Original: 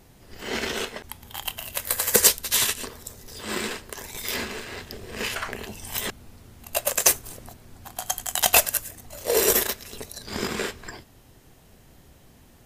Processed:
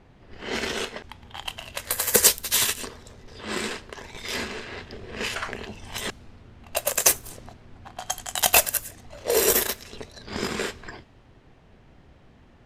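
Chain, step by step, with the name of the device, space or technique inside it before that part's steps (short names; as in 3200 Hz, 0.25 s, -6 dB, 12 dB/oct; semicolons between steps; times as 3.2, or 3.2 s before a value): cassette deck with a dynamic noise filter (white noise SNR 32 dB; low-pass opened by the level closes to 2300 Hz, open at -22.5 dBFS)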